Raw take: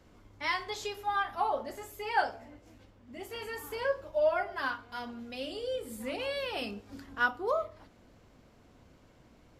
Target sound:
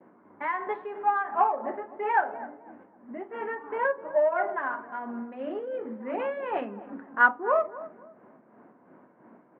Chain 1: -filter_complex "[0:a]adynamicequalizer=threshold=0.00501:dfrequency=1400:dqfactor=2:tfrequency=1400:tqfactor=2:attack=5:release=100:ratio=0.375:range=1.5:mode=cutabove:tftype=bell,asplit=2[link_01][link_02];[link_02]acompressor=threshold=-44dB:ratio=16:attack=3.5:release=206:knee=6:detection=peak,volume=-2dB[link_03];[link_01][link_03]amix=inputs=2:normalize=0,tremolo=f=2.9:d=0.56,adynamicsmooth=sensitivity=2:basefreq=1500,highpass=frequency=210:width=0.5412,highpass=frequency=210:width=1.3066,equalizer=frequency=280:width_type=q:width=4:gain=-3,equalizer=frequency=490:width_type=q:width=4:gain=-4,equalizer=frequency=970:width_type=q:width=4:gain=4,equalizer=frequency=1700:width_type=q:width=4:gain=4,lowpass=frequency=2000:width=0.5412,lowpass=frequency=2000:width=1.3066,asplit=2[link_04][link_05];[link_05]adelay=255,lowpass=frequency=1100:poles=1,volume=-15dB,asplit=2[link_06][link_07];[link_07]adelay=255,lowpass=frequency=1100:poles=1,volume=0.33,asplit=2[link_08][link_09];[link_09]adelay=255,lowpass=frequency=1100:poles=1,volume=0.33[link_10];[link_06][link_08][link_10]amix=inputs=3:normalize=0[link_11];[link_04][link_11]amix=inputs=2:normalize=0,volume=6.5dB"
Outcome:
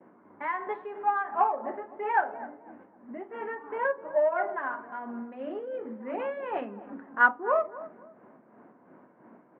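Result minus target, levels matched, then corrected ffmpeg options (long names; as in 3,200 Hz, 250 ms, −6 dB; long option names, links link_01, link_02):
downward compressor: peak gain reduction +9.5 dB
-filter_complex "[0:a]adynamicequalizer=threshold=0.00501:dfrequency=1400:dqfactor=2:tfrequency=1400:tqfactor=2:attack=5:release=100:ratio=0.375:range=1.5:mode=cutabove:tftype=bell,asplit=2[link_01][link_02];[link_02]acompressor=threshold=-34dB:ratio=16:attack=3.5:release=206:knee=6:detection=peak,volume=-2dB[link_03];[link_01][link_03]amix=inputs=2:normalize=0,tremolo=f=2.9:d=0.56,adynamicsmooth=sensitivity=2:basefreq=1500,highpass=frequency=210:width=0.5412,highpass=frequency=210:width=1.3066,equalizer=frequency=280:width_type=q:width=4:gain=-3,equalizer=frequency=490:width_type=q:width=4:gain=-4,equalizer=frequency=970:width_type=q:width=4:gain=4,equalizer=frequency=1700:width_type=q:width=4:gain=4,lowpass=frequency=2000:width=0.5412,lowpass=frequency=2000:width=1.3066,asplit=2[link_04][link_05];[link_05]adelay=255,lowpass=frequency=1100:poles=1,volume=-15dB,asplit=2[link_06][link_07];[link_07]adelay=255,lowpass=frequency=1100:poles=1,volume=0.33,asplit=2[link_08][link_09];[link_09]adelay=255,lowpass=frequency=1100:poles=1,volume=0.33[link_10];[link_06][link_08][link_10]amix=inputs=3:normalize=0[link_11];[link_04][link_11]amix=inputs=2:normalize=0,volume=6.5dB"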